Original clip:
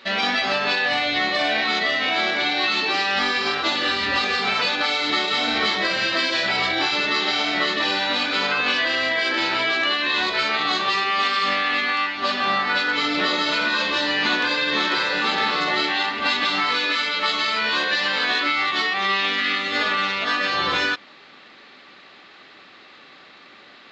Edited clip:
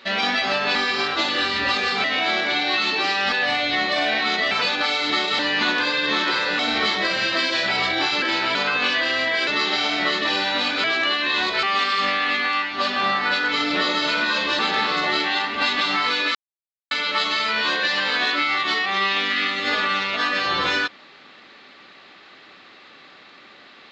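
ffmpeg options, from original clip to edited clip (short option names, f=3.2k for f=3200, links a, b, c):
-filter_complex "[0:a]asplit=14[a][b][c][d][e][f][g][h][i][j][k][l][m][n];[a]atrim=end=0.752[o];[b]atrim=start=3.218:end=4.512[p];[c]atrim=start=1.938:end=3.222[q];[d]atrim=start=0.748:end=1.942[r];[e]atrim=start=4.508:end=5.392[s];[f]atrim=start=14.028:end=15.232[t];[g]atrim=start=5.388:end=7.022[u];[h]atrim=start=9.308:end=9.642[v];[i]atrim=start=8.388:end=9.312[w];[j]atrim=start=7.018:end=8.392[x];[k]atrim=start=9.638:end=10.432[y];[l]atrim=start=11.068:end=14.032[z];[m]atrim=start=15.228:end=16.99,asetpts=PTS-STARTPTS,afade=t=out:st=1.758:d=0.004:c=hsin,apad=pad_dur=0.56[aa];[n]atrim=start=16.99,asetpts=PTS-STARTPTS,afade=t=in:d=0.004:c=hsin[ab];[o][p]acrossfade=d=0.004:c1=hsin:c2=hsin[ac];[ac][q]acrossfade=d=0.004:c1=hsin:c2=hsin[ad];[ad][r]acrossfade=d=0.004:c1=hsin:c2=hsin[ae];[ae][s]acrossfade=d=0.004:c1=hsin:c2=hsin[af];[af][t]acrossfade=d=0.004:c1=hsin:c2=hsin[ag];[ag][u]acrossfade=d=0.004:c1=hsin:c2=hsin[ah];[ah][v]acrossfade=d=0.004:c1=hsin:c2=hsin[ai];[ai][w]acrossfade=d=0.004:c1=hsin:c2=hsin[aj];[aj][x]acrossfade=d=0.004:c1=hsin:c2=hsin[ak];[ak][y]acrossfade=d=0.004:c1=hsin:c2=hsin[al];[al][z]acrossfade=d=0.004:c1=hsin:c2=hsin[am];[aa][ab]concat=n=2:v=0:a=1[an];[am][an]acrossfade=d=0.004:c1=hsin:c2=hsin"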